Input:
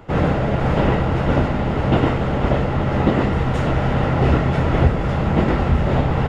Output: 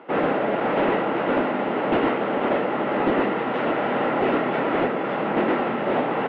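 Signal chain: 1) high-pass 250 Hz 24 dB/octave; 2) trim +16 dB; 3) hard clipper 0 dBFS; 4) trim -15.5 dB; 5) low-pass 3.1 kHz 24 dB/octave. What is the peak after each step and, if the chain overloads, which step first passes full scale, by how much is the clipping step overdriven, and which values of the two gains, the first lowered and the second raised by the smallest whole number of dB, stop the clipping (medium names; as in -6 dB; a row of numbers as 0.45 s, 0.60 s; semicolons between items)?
-7.0 dBFS, +9.0 dBFS, 0.0 dBFS, -15.5 dBFS, -14.5 dBFS; step 2, 9.0 dB; step 2 +7 dB, step 4 -6.5 dB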